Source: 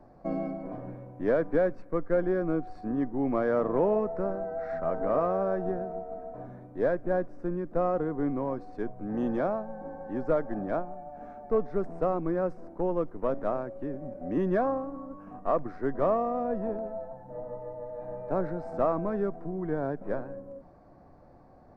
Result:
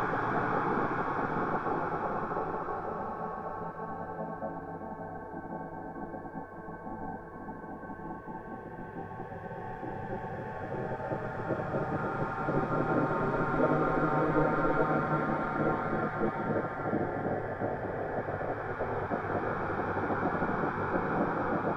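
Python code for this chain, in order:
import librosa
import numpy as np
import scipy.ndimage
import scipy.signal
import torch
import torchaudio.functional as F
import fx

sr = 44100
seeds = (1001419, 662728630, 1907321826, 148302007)

y = fx.paulstretch(x, sr, seeds[0], factor=16.0, window_s=0.5, from_s=9.45)
y = fx.spec_gate(y, sr, threshold_db=-10, keep='weak')
y = F.gain(torch.from_numpy(y), 7.0).numpy()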